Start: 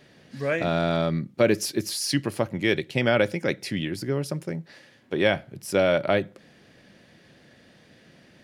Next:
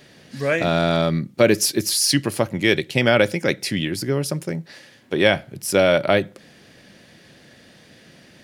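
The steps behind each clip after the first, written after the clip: treble shelf 4 kHz +7 dB; trim +4.5 dB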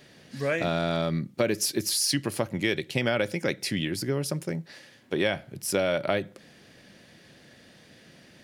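compression 3:1, threshold -18 dBFS, peak gain reduction 6.5 dB; trim -4.5 dB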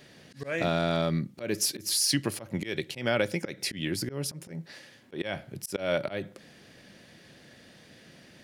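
slow attack 161 ms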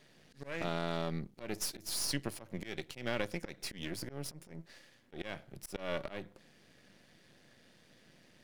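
partial rectifier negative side -12 dB; trim -6.5 dB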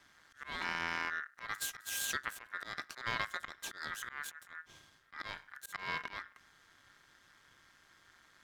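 ring modulator 1.6 kHz; trim +1 dB

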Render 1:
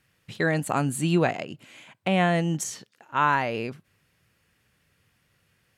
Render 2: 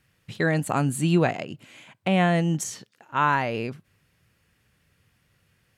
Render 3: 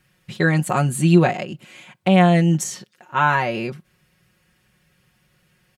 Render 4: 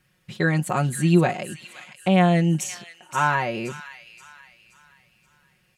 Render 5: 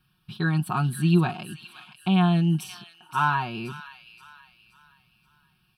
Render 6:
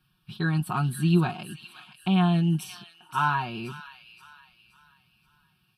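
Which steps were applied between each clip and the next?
bass shelf 170 Hz +5 dB
comb 5.5 ms, depth 70%; trim +3 dB
feedback echo behind a high-pass 525 ms, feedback 40%, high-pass 2.1 kHz, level -9 dB; trim -3.5 dB
static phaser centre 2 kHz, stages 6
trim -1.5 dB; Vorbis 48 kbps 44.1 kHz

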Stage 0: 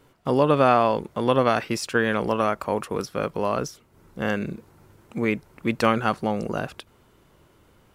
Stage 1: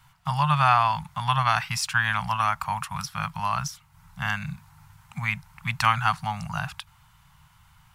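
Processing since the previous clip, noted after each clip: elliptic band-stop 160–850 Hz, stop band 50 dB; trim +3.5 dB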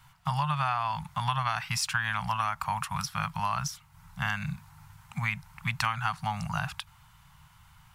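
compression 6:1, threshold -25 dBFS, peak gain reduction 11 dB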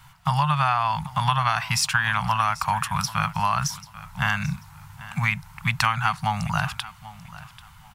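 feedback delay 789 ms, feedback 24%, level -17.5 dB; trim +7 dB

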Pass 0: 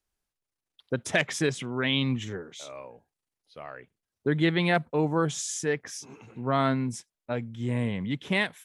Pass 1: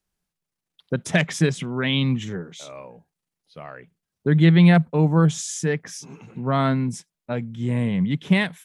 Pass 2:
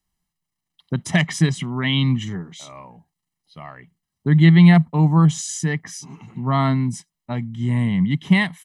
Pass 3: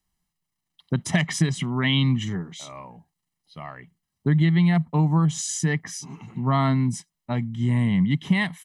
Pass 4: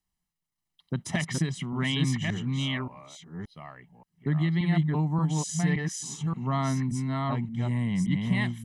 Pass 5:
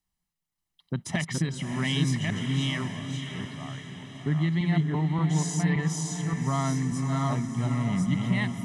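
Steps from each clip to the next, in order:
peaking EQ 170 Hz +13.5 dB 0.48 oct; trim +2.5 dB
comb 1 ms, depth 69%
compression 10:1, threshold -16 dBFS, peak gain reduction 9.5 dB
chunks repeated in reverse 576 ms, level -2 dB; trim -6.5 dB
echo that smears into a reverb 611 ms, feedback 54%, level -7.5 dB

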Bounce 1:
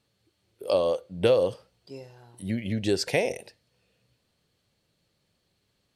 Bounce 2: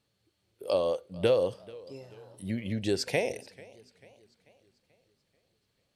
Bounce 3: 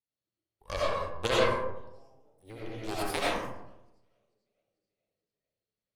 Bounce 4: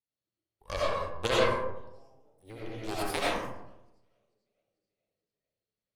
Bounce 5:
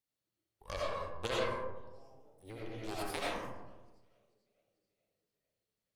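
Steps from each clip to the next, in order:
modulated delay 439 ms, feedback 48%, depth 128 cents, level -22 dB; trim -3.5 dB
Chebyshev shaper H 3 -10 dB, 8 -23 dB, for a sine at -11.5 dBFS; time-frequency box 1.91–2.41 s, 890–4900 Hz -11 dB; algorithmic reverb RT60 0.9 s, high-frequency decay 0.4×, pre-delay 45 ms, DRR -7 dB
no audible change
compression 1.5:1, threshold -53 dBFS, peak gain reduction 12 dB; trim +2 dB

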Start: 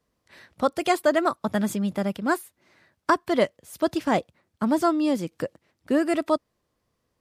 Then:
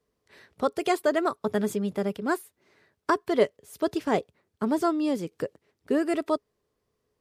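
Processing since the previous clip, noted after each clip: peaking EQ 420 Hz +14 dB 0.2 oct; trim -4 dB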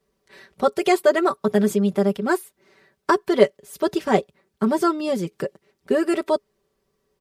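comb 5.2 ms, depth 77%; trim +4 dB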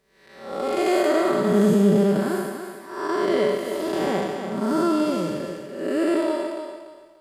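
spectral blur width 286 ms; thinning echo 290 ms, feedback 30%, high-pass 240 Hz, level -7 dB; trim +5 dB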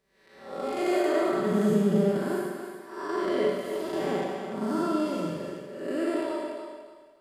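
reverberation RT60 0.65 s, pre-delay 42 ms, DRR 3 dB; trim -7.5 dB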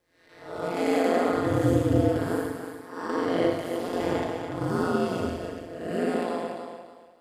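hum notches 50/100/150/200 Hz; ring modulator 86 Hz; trim +4.5 dB

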